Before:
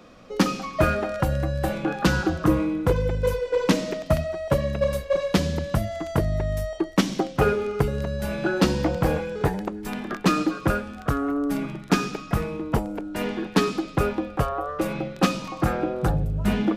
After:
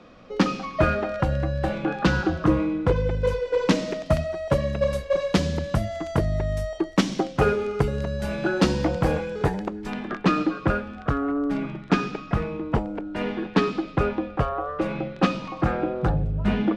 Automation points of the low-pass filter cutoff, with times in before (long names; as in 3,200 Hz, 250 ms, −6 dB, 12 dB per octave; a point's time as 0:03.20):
0:02.89 4,600 Hz
0:04.13 8,300 Hz
0:09.46 8,300 Hz
0:10.22 3,600 Hz